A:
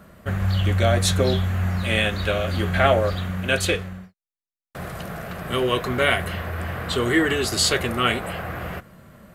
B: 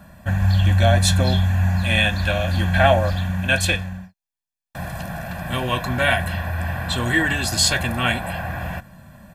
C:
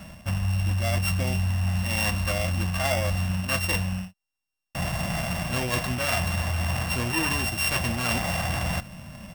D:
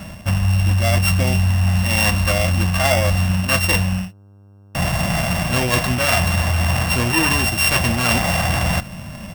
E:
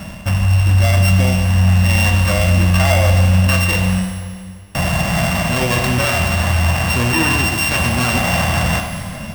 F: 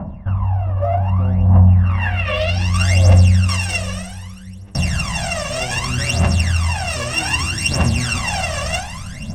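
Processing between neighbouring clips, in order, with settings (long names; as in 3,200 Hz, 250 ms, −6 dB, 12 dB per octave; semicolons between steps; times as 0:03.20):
comb filter 1.2 ms, depth 85%
samples sorted by size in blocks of 16 samples; reversed playback; downward compressor 6 to 1, threshold −26 dBFS, peak gain reduction 15 dB; reversed playback; level +3 dB
hum with harmonics 100 Hz, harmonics 16, −55 dBFS −9 dB per octave; level +8.5 dB
brickwall limiter −11 dBFS, peak gain reduction 7.5 dB; four-comb reverb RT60 2 s, combs from 33 ms, DRR 4.5 dB; level +3 dB
low-pass filter sweep 910 Hz → 7,000 Hz, 0:01.74–0:02.76; phase shifter 0.64 Hz, delay 1.8 ms, feedback 78%; level −9 dB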